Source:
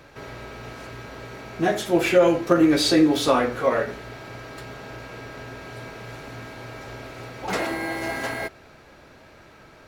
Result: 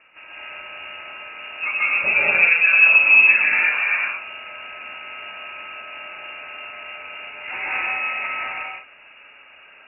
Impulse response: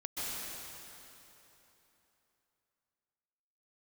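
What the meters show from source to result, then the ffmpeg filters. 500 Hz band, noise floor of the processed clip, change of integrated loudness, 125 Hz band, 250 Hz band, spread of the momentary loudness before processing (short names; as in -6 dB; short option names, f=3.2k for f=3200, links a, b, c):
-14.5 dB, -48 dBFS, +6.5 dB, under -15 dB, under -20 dB, 20 LU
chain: -filter_complex "[1:a]atrim=start_sample=2205,afade=t=out:st=0.41:d=0.01,atrim=end_sample=18522[a];[0:a][a]afir=irnorm=-1:irlink=0,lowpass=f=2.5k:t=q:w=0.5098,lowpass=f=2.5k:t=q:w=0.6013,lowpass=f=2.5k:t=q:w=0.9,lowpass=f=2.5k:t=q:w=2.563,afreqshift=-2900"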